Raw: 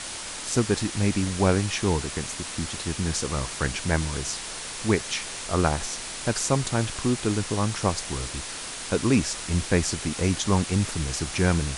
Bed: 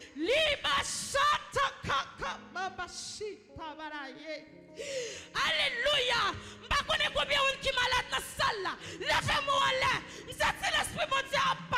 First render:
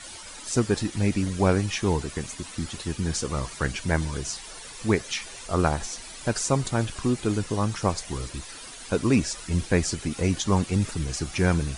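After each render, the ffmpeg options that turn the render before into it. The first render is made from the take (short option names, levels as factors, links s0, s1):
-af "afftdn=nr=12:nf=-36"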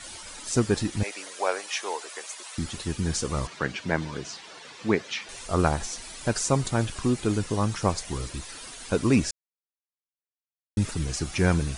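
-filter_complex "[0:a]asettb=1/sr,asplit=3[s0][s1][s2];[s0]atrim=end=1.034[s3];[s1]atrim=start=1.03:end=2.58,asetpts=PTS-STARTPTS,afade=t=in:d=0.004:c=qsin,afade=t=out:st=1.546:d=0.004:c=qsin,highpass=f=520:w=0.5412,highpass=f=520:w=1.3066[s4];[s2]atrim=start=2.576[s5];[s3][s4]acrossfade=d=0.004:c1=hsin:c2=qsin[s6];[s6][s5]acrossfade=d=0.004:c1=qsin:c2=hsin,asettb=1/sr,asplit=3[s7][s8][s9];[s7]atrim=end=3.474[s10];[s8]atrim=start=3.47:end=5.29,asetpts=PTS-STARTPTS,afade=t=in:d=0.004:c=qsin,afade=t=out:st=1.816:d=0.004:c=qsin,highpass=160,lowpass=4400[s11];[s9]atrim=start=5.286[s12];[s10][s11]acrossfade=d=0.004:c1=hsin:c2=qsin[s13];[s13][s12]acrossfade=d=0.004:c1=qsin:c2=hsin,asplit=3[s14][s15][s16];[s14]atrim=end=9.31,asetpts=PTS-STARTPTS,afade=t=out:st=9.306:d=0.004:c=hsin[s17];[s15]atrim=start=9.31:end=10.77,asetpts=PTS-STARTPTS,volume=0[s18];[s16]atrim=start=10.77,asetpts=PTS-STARTPTS,afade=t=in:d=0.004:c=hsin[s19];[s17][s18][s19]concat=n=3:v=0:a=1"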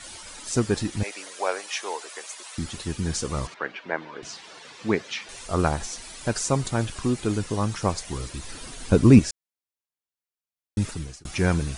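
-filter_complex "[0:a]asettb=1/sr,asplit=3[s0][s1][s2];[s0]atrim=end=3.544[s3];[s1]atrim=start=3.54:end=4.23,asetpts=PTS-STARTPTS,afade=t=in:d=0.004:c=qsin,afade=t=out:st=0.686:d=0.004:c=qsin,highpass=410,lowpass=2500[s4];[s2]atrim=start=4.226[s5];[s3][s4]acrossfade=d=0.004:c1=hsin:c2=qsin[s6];[s6][s5]acrossfade=d=0.004:c1=qsin:c2=hsin,asettb=1/sr,asplit=3[s7][s8][s9];[s7]atrim=end=8.444[s10];[s8]atrim=start=8.44:end=9.19,asetpts=PTS-STARTPTS,afade=t=in:d=0.004:c=qsin,afade=t=out:st=0.746:d=0.004:c=qsin,lowshelf=f=360:g=12[s11];[s9]atrim=start=9.186[s12];[s10][s11]acrossfade=d=0.004:c1=hsin:c2=qsin[s13];[s13][s12]acrossfade=d=0.004:c1=qsin:c2=hsin,asplit=2[s14][s15];[s14]atrim=end=11.25,asetpts=PTS-STARTPTS,afade=t=out:st=10.85:d=0.4[s16];[s15]atrim=start=11.25,asetpts=PTS-STARTPTS,afade=t=in:d=0.004:c=hsin[s17];[s16][s17]concat=n=2:v=0:a=1"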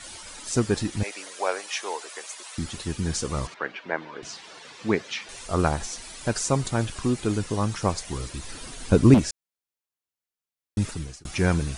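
-filter_complex "[0:a]asettb=1/sr,asplit=3[s0][s1][s2];[s0]atrim=end=9.144[s3];[s1]atrim=start=9.14:end=10.79,asetpts=PTS-STARTPTS,afade=t=in:d=0.004:c=qsin,afade=t=out:st=1.646:d=0.004:c=qsin,asoftclip=type=hard:threshold=0.178[s4];[s2]atrim=start=10.786[s5];[s3][s4]acrossfade=d=0.004:c1=hsin:c2=qsin[s6];[s6][s5]acrossfade=d=0.004:c1=qsin:c2=hsin"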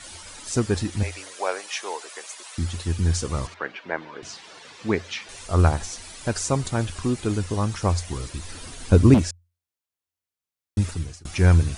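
-af "equalizer=f=87:w=6.5:g=13.5"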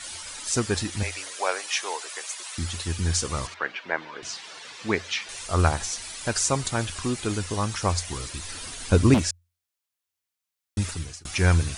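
-af "tiltshelf=f=790:g=-4.5"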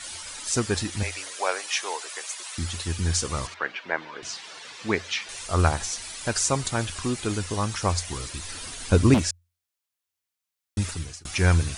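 -af anull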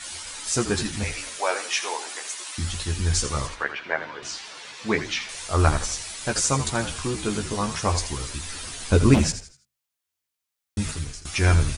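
-filter_complex "[0:a]asplit=2[s0][s1];[s1]adelay=14,volume=0.562[s2];[s0][s2]amix=inputs=2:normalize=0,asplit=5[s3][s4][s5][s6][s7];[s4]adelay=82,afreqshift=-55,volume=0.282[s8];[s5]adelay=164,afreqshift=-110,volume=0.0989[s9];[s6]adelay=246,afreqshift=-165,volume=0.0347[s10];[s7]adelay=328,afreqshift=-220,volume=0.012[s11];[s3][s8][s9][s10][s11]amix=inputs=5:normalize=0"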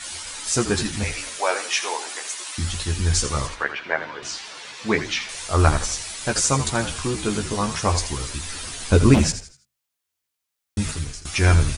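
-af "volume=1.33,alimiter=limit=0.891:level=0:latency=1"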